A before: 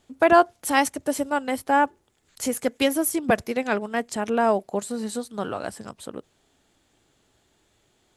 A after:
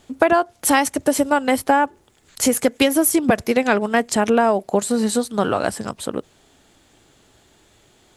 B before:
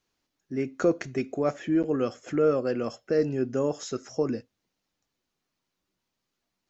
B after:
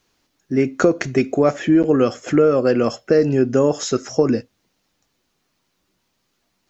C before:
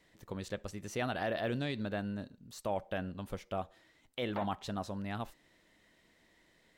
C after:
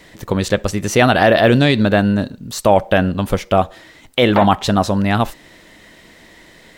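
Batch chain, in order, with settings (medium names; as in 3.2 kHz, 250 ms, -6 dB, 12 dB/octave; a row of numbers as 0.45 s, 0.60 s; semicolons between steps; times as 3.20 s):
compression 16:1, threshold -22 dBFS; peak normalisation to -1.5 dBFS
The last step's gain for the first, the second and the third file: +10.5 dB, +12.5 dB, +23.0 dB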